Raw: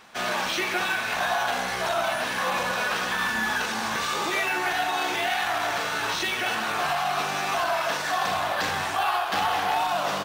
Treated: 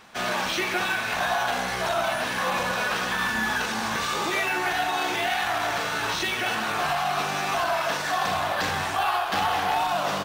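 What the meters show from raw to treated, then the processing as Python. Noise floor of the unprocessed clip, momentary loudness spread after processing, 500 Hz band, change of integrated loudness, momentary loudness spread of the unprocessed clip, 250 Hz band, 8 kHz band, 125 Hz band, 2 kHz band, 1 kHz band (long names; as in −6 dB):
−29 dBFS, 2 LU, +0.5 dB, 0.0 dB, 2 LU, +2.0 dB, 0.0 dB, +3.5 dB, 0.0 dB, +0.5 dB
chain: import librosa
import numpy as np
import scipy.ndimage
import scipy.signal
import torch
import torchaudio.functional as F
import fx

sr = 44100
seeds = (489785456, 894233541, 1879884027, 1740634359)

y = fx.low_shelf(x, sr, hz=200.0, db=5.5)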